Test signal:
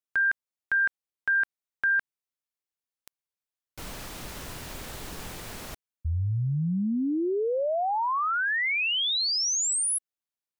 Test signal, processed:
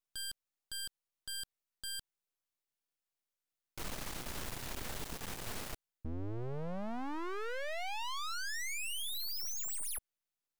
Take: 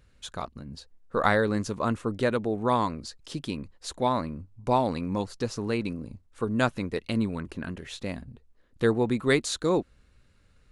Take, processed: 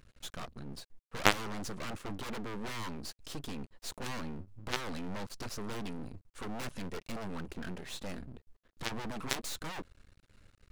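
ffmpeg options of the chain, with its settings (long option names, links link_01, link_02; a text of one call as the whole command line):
ffmpeg -i in.wav -af "aeval=exprs='0.501*(cos(1*acos(clip(val(0)/0.501,-1,1)))-cos(1*PI/2))+0.0316*(cos(3*acos(clip(val(0)/0.501,-1,1)))-cos(3*PI/2))+0.0398*(cos(4*acos(clip(val(0)/0.501,-1,1)))-cos(4*PI/2))+0.01*(cos(7*acos(clip(val(0)/0.501,-1,1)))-cos(7*PI/2))+0.0708*(cos(8*acos(clip(val(0)/0.501,-1,1)))-cos(8*PI/2))':channel_layout=same,aeval=exprs='max(val(0),0)':channel_layout=same,volume=7dB" out.wav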